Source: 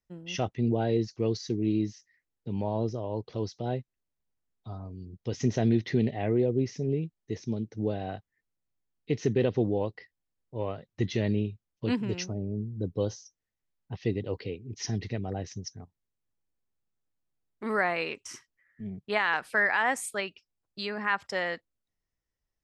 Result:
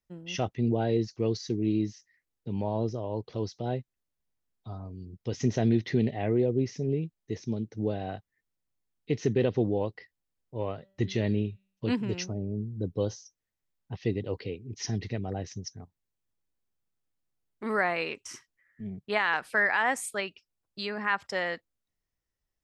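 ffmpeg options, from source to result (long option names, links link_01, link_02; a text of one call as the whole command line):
ffmpeg -i in.wav -filter_complex "[0:a]asettb=1/sr,asplit=3[link_01][link_02][link_03];[link_01]atrim=end=10.764[link_04];[link_02]atrim=start=10.76:end=11.85,asetpts=PTS-STARTPTS,afade=type=in:duration=0.004:curve=qsin,afade=type=out:start_time=1.086:duration=0.004:curve=qsin,bandreject=frequency=193.9:width_type=h:width=4,bandreject=frequency=387.8:width_type=h:width=4,bandreject=frequency=581.7:width_type=h:width=4,bandreject=frequency=775.6:width_type=h:width=4,bandreject=frequency=969.5:width_type=h:width=4,bandreject=frequency=1163.4:width_type=h:width=4,bandreject=frequency=1357.3:width_type=h:width=4,bandreject=frequency=1551.2:width_type=h:width=4,bandreject=frequency=1745.1:width_type=h:width=4,bandreject=frequency=1939:width_type=h:width=4,bandreject=frequency=2132.9:width_type=h:width=4,bandreject=frequency=2326.8:width_type=h:width=4,bandreject=frequency=2520.7:width_type=h:width=4,bandreject=frequency=2714.6:width_type=h:width=4,bandreject=frequency=2908.5:width_type=h:width=4,bandreject=frequency=3102.4:width_type=h:width=4,bandreject=frequency=3296.3:width_type=h:width=4,bandreject=frequency=3490.2:width_type=h:width=4,bandreject=frequency=3684.1:width_type=h:width=4,bandreject=frequency=3878:width_type=h:width=4,bandreject=frequency=4071.9:width_type=h:width=4,bandreject=frequency=4265.8:width_type=h:width=4,bandreject=frequency=4459.7:width_type=h:width=4[link_05];[link_03]atrim=start=11.846[link_06];[link_04][link_05]acrossfade=duration=0.004:curve1=hsin:curve2=qsin[link_07];[link_07][link_06]acrossfade=duration=0.004:curve1=qsin:curve2=hsin" out.wav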